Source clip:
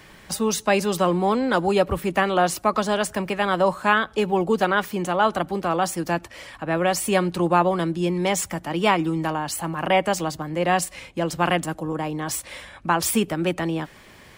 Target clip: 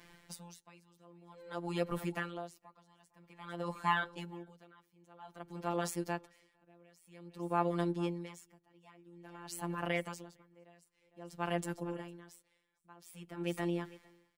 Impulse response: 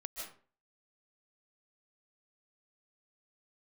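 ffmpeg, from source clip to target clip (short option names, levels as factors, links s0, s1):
-af "afftfilt=real='hypot(re,im)*cos(PI*b)':imag='0':win_size=1024:overlap=0.75,aecho=1:1:455:0.119,aeval=exprs='val(0)*pow(10,-30*(0.5-0.5*cos(2*PI*0.51*n/s))/20)':c=same,volume=0.398"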